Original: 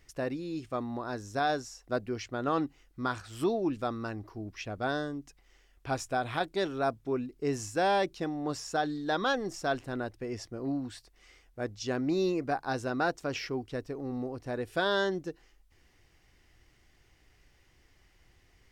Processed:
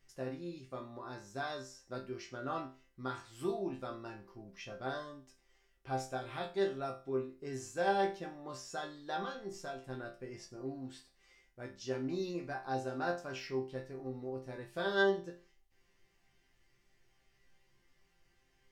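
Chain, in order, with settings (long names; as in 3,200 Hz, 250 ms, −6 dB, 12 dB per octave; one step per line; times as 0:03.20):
0:09.23–0:09.89: downward compressor, threshold −31 dBFS, peak gain reduction 7.5 dB
resonators tuned to a chord C3 sus4, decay 0.35 s
level +7.5 dB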